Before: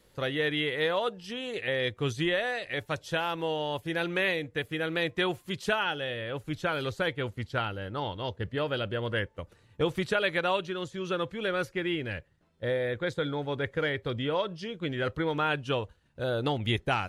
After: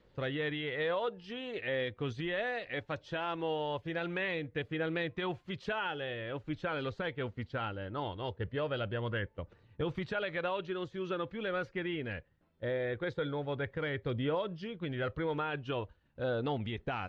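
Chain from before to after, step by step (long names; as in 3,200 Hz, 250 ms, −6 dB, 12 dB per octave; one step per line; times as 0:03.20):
brickwall limiter −21 dBFS, peak gain reduction 8.5 dB
phase shifter 0.21 Hz, delay 4.7 ms, feedback 22%
high-frequency loss of the air 210 metres
level −3 dB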